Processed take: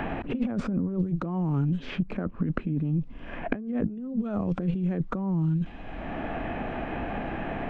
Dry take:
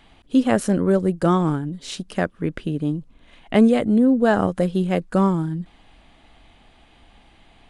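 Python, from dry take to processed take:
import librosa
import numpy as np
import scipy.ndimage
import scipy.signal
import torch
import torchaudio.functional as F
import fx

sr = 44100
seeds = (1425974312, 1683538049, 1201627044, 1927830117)

y = fx.over_compress(x, sr, threshold_db=-29.0, ratio=-1.0)
y = fx.dynamic_eq(y, sr, hz=240.0, q=2.2, threshold_db=-39.0, ratio=4.0, max_db=5)
y = fx.formant_shift(y, sr, semitones=-3)
y = fx.spacing_loss(y, sr, db_at_10k=38)
y = fx.band_squash(y, sr, depth_pct=100)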